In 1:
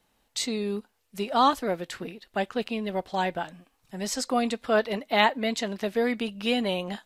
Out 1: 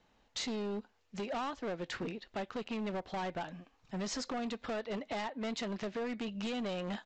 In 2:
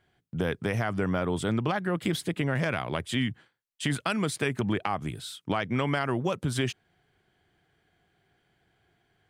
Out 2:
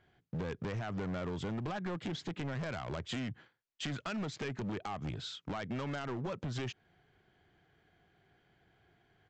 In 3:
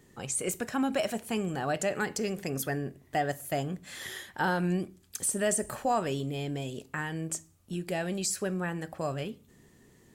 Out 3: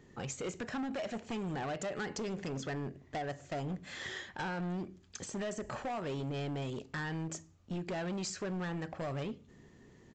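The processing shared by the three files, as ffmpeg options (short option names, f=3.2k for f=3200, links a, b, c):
-af "highshelf=f=4.3k:g=-8,acompressor=threshold=-31dB:ratio=20,aresample=16000,asoftclip=type=hard:threshold=-35dB,aresample=44100,volume=1dB"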